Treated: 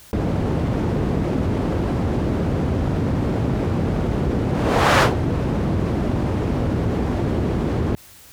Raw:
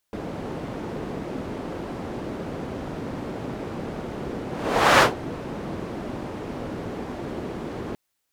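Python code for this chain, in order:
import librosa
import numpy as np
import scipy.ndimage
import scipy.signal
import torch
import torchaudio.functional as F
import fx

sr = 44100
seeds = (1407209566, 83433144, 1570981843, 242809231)

y = fx.peak_eq(x, sr, hz=74.0, db=14.0, octaves=2.4)
y = fx.env_flatten(y, sr, amount_pct=50)
y = y * 10.0 ** (-1.5 / 20.0)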